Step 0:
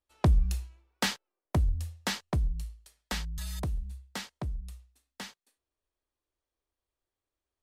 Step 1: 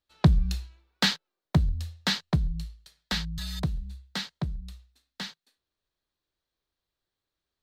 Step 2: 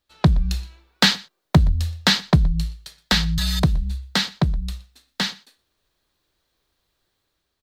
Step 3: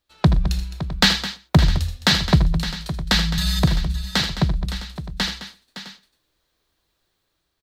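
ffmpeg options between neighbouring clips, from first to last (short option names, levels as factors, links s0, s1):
-af "equalizer=f=160:t=o:w=0.67:g=11,equalizer=f=1600:t=o:w=0.67:g=5,equalizer=f=4000:t=o:w=0.67:g=11,equalizer=f=10000:t=o:w=0.67:g=-6"
-filter_complex "[0:a]asplit=2[s0][s1];[s1]acompressor=threshold=0.0224:ratio=6,volume=1.12[s2];[s0][s2]amix=inputs=2:normalize=0,aecho=1:1:121:0.0708,dynaudnorm=f=170:g=7:m=2,volume=1.19"
-af "aecho=1:1:77|83|212|563|659:0.224|0.237|0.224|0.237|0.141"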